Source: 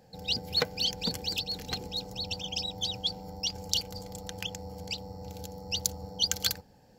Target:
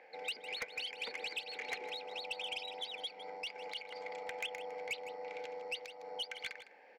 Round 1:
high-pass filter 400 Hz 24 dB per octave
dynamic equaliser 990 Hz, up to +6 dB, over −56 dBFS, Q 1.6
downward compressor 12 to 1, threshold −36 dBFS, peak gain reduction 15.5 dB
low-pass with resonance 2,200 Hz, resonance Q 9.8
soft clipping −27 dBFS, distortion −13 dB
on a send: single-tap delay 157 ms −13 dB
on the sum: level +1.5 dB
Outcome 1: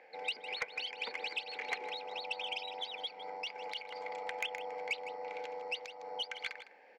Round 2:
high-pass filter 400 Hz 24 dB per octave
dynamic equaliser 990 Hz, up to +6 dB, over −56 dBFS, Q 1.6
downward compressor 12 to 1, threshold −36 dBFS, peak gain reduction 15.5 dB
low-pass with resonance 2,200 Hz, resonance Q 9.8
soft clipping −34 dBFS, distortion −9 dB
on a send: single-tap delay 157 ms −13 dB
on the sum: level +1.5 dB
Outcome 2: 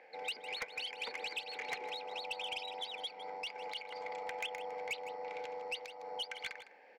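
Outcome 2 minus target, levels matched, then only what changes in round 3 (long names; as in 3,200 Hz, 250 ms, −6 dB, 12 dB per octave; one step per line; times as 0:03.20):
1,000 Hz band +3.0 dB
remove: dynamic equaliser 990 Hz, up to +6 dB, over −56 dBFS, Q 1.6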